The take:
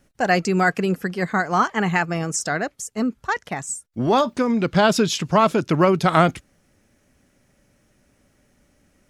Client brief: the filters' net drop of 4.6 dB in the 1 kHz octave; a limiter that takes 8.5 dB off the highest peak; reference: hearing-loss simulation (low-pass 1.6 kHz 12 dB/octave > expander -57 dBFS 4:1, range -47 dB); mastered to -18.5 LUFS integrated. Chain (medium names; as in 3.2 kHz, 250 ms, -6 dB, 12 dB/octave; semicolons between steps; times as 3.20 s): peaking EQ 1 kHz -5.5 dB; peak limiter -13 dBFS; low-pass 1.6 kHz 12 dB/octave; expander -57 dBFS 4:1, range -47 dB; trim +6.5 dB